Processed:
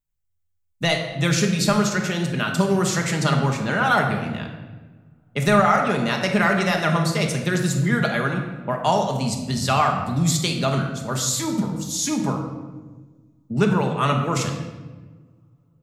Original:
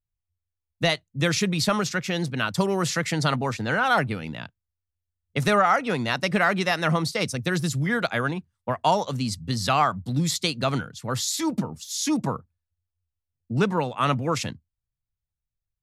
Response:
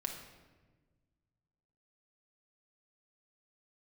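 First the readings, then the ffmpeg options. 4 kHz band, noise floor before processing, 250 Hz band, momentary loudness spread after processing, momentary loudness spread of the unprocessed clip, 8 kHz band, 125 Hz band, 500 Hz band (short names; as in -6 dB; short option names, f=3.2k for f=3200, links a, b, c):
+1.5 dB, under -85 dBFS, +4.5 dB, 9 LU, 9 LU, +4.5 dB, +5.0 dB, +3.0 dB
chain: -filter_complex "[0:a]highshelf=f=8.8k:g=-5.5[a];[1:a]atrim=start_sample=2205[b];[a][b]afir=irnorm=-1:irlink=0,aexciter=amount=2.8:drive=1.1:freq=6.5k,volume=2dB"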